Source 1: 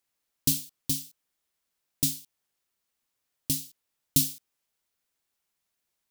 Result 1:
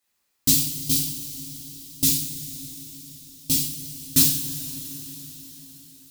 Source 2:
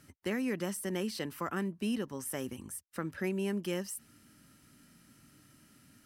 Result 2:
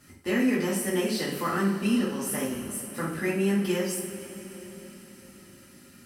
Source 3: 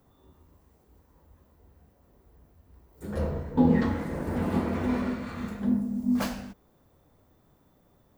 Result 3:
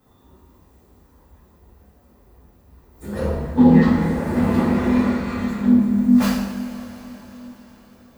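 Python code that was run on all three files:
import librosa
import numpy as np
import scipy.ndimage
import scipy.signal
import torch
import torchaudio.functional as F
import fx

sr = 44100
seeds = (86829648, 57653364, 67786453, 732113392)

y = np.minimum(x, 2.0 * 10.0 ** (-12.0 / 20.0) - x)
y = fx.rev_double_slope(y, sr, seeds[0], early_s=0.5, late_s=4.9, knee_db=-17, drr_db=-8.0)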